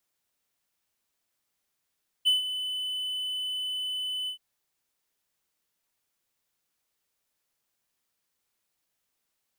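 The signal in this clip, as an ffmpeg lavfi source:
-f lavfi -i "aevalsrc='0.158*(1-4*abs(mod(3010*t+0.25,1)-0.5))':d=2.126:s=44100,afade=t=in:d=0.025,afade=t=out:st=0.025:d=0.142:silence=0.266,afade=t=out:st=2.03:d=0.096"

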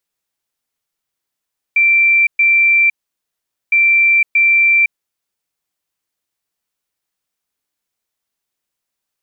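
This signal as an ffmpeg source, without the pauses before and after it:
-f lavfi -i "aevalsrc='0.398*sin(2*PI*2350*t)*clip(min(mod(mod(t,1.96),0.63),0.51-mod(mod(t,1.96),0.63))/0.005,0,1)*lt(mod(t,1.96),1.26)':d=3.92:s=44100"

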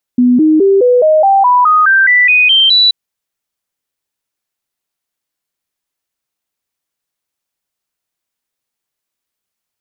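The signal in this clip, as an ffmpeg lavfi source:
-f lavfi -i "aevalsrc='0.562*clip(min(mod(t,0.21),0.21-mod(t,0.21))/0.005,0,1)*sin(2*PI*247*pow(2,floor(t/0.21)/3)*mod(t,0.21))':d=2.73:s=44100"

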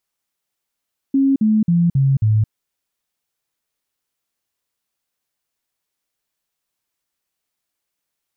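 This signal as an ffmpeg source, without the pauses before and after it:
-f lavfi -i "aevalsrc='0.266*clip(min(mod(t,0.27),0.22-mod(t,0.27))/0.005,0,1)*sin(2*PI*272*pow(2,-floor(t/0.27)/3)*mod(t,0.27))':d=1.35:s=44100"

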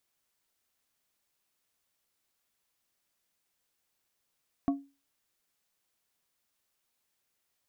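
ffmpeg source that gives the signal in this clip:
-f lavfi -i "aevalsrc='0.0891*pow(10,-3*t/0.3)*sin(2*PI*278*t)+0.0355*pow(10,-3*t/0.158)*sin(2*PI*695*t)+0.0141*pow(10,-3*t/0.114)*sin(2*PI*1112*t)':d=0.89:s=44100"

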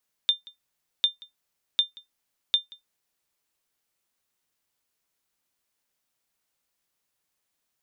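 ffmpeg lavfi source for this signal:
-f lavfi -i "aevalsrc='0.251*(sin(2*PI*3600*mod(t,0.75))*exp(-6.91*mod(t,0.75)/0.14)+0.0631*sin(2*PI*3600*max(mod(t,0.75)-0.18,0))*exp(-6.91*max(mod(t,0.75)-0.18,0)/0.14))':d=3:s=44100"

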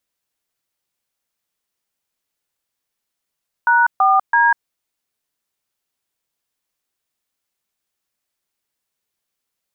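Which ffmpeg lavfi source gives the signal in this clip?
-f lavfi -i "aevalsrc='0.224*clip(min(mod(t,0.331),0.196-mod(t,0.331))/0.002,0,1)*(eq(floor(t/0.331),0)*(sin(2*PI*941*mod(t,0.331))+sin(2*PI*1477*mod(t,0.331)))+eq(floor(t/0.331),1)*(sin(2*PI*770*mod(t,0.331))+sin(2*PI*1209*mod(t,0.331)))+eq(floor(t/0.331),2)*(sin(2*PI*941*mod(t,0.331))+sin(2*PI*1633*mod(t,0.331))))':d=0.993:s=44100"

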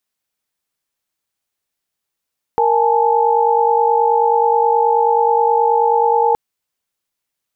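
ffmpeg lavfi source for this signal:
-f lavfi -i "aevalsrc='0.168*(sin(2*PI*466.16*t)+sin(2*PI*830.61*t)+sin(2*PI*880*t))':d=3.77:s=44100"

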